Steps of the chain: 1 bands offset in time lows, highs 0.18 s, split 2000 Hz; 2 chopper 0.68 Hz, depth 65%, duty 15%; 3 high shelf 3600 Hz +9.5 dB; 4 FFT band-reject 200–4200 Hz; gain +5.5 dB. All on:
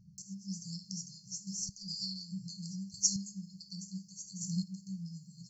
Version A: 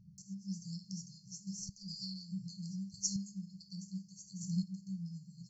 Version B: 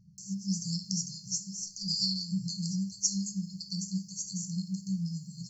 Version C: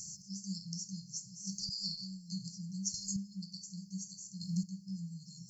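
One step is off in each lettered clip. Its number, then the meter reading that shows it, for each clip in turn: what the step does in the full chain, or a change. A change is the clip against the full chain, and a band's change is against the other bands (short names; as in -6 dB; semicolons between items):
3, crest factor change -5.0 dB; 2, momentary loudness spread change -7 LU; 1, momentary loudness spread change -7 LU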